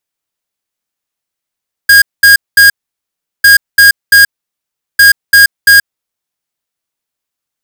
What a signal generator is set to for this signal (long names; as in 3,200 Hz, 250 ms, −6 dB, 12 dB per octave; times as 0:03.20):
beeps in groups square 1,630 Hz, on 0.13 s, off 0.21 s, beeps 3, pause 0.74 s, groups 3, −3 dBFS